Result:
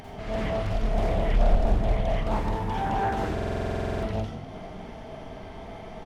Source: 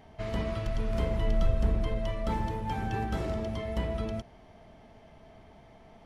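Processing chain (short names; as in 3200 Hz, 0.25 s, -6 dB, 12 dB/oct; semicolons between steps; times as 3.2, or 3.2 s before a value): upward compressor, threshold -34 dBFS; frequency-shifting echo 0.249 s, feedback 57%, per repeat +42 Hz, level -15 dB; reverb RT60 0.75 s, pre-delay 37 ms, DRR -4.5 dB; stuck buffer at 3.33, samples 2048, times 14; Doppler distortion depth 0.9 ms; gain -1.5 dB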